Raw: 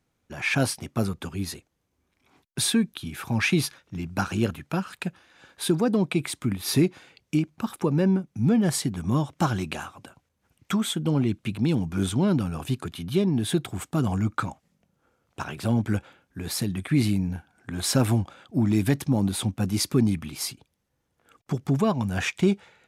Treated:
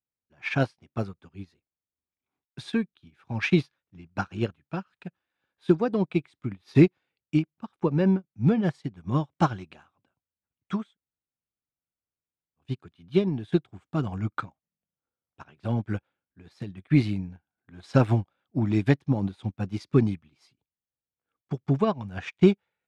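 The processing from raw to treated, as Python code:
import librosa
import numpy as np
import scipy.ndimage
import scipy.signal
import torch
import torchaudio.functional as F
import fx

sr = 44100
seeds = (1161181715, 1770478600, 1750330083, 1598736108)

y = fx.edit(x, sr, fx.room_tone_fill(start_s=10.89, length_s=1.75, crossfade_s=0.16), tone=tone)
y = scipy.signal.sosfilt(scipy.signal.butter(2, 4000.0, 'lowpass', fs=sr, output='sos'), y)
y = fx.dynamic_eq(y, sr, hz=240.0, q=3.4, threshold_db=-36.0, ratio=4.0, max_db=-4)
y = fx.upward_expand(y, sr, threshold_db=-39.0, expansion=2.5)
y = F.gain(torch.from_numpy(y), 6.0).numpy()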